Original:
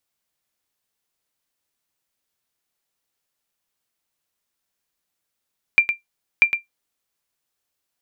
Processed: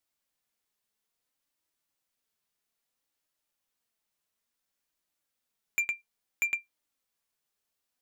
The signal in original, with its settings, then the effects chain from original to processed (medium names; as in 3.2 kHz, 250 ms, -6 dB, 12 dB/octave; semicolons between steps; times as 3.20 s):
sonar ping 2.37 kHz, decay 0.14 s, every 0.64 s, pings 2, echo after 0.11 s, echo -8.5 dB -4 dBFS
saturation -18 dBFS; flange 0.6 Hz, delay 3 ms, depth 2 ms, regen +66%